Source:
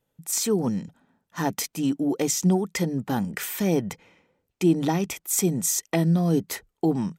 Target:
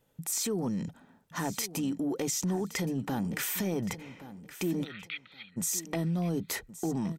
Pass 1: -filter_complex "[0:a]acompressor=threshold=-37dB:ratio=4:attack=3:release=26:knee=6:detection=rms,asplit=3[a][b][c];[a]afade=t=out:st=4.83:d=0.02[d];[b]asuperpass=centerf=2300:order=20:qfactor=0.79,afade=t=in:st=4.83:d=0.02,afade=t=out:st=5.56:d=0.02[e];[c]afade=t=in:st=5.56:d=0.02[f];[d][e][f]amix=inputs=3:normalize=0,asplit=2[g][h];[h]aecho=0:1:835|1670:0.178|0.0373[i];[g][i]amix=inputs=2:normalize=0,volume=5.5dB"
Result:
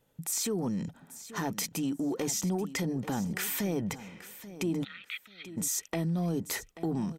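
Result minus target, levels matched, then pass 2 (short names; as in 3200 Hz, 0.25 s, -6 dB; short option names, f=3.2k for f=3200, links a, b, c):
echo 0.286 s early
-filter_complex "[0:a]acompressor=threshold=-37dB:ratio=4:attack=3:release=26:knee=6:detection=rms,asplit=3[a][b][c];[a]afade=t=out:st=4.83:d=0.02[d];[b]asuperpass=centerf=2300:order=20:qfactor=0.79,afade=t=in:st=4.83:d=0.02,afade=t=out:st=5.56:d=0.02[e];[c]afade=t=in:st=5.56:d=0.02[f];[d][e][f]amix=inputs=3:normalize=0,asplit=2[g][h];[h]aecho=0:1:1121|2242:0.178|0.0373[i];[g][i]amix=inputs=2:normalize=0,volume=5.5dB"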